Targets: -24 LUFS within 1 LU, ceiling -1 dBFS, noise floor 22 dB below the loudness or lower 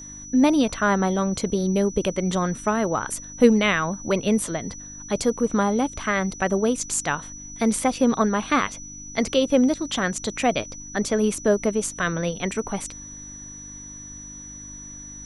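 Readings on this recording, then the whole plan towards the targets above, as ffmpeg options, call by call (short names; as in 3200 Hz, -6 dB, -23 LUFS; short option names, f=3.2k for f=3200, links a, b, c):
hum 50 Hz; harmonics up to 300 Hz; hum level -45 dBFS; steady tone 5900 Hz; tone level -38 dBFS; loudness -23.0 LUFS; peak -3.5 dBFS; loudness target -24.0 LUFS
-> -af "bandreject=f=50:t=h:w=4,bandreject=f=100:t=h:w=4,bandreject=f=150:t=h:w=4,bandreject=f=200:t=h:w=4,bandreject=f=250:t=h:w=4,bandreject=f=300:t=h:w=4"
-af "bandreject=f=5.9k:w=30"
-af "volume=-1dB"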